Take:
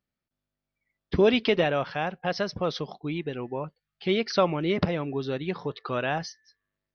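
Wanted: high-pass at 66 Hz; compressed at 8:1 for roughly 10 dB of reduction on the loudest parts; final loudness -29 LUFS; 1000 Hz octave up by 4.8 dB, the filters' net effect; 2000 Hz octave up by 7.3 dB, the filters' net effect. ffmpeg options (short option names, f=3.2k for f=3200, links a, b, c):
-af "highpass=66,equalizer=f=1k:t=o:g=4.5,equalizer=f=2k:t=o:g=8,acompressor=threshold=-24dB:ratio=8,volume=1.5dB"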